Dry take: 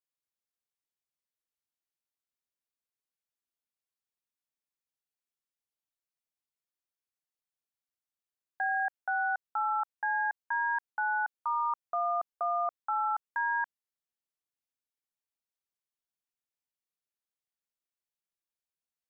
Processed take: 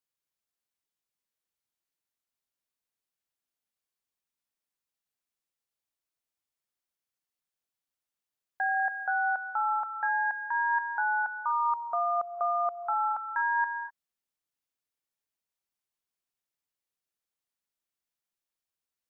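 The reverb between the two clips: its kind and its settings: non-linear reverb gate 0.27 s rising, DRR 10.5 dB; gain +2 dB

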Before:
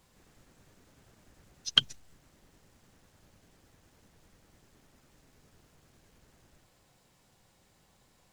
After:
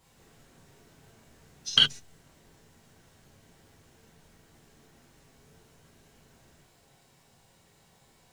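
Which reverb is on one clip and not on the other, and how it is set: non-linear reverb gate 90 ms flat, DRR -4 dB; gain -1 dB

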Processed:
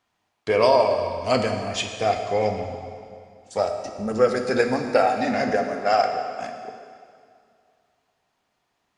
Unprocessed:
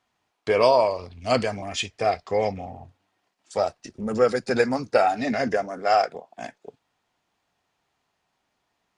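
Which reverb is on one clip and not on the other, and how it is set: plate-style reverb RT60 2.3 s, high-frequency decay 0.9×, DRR 4.5 dB

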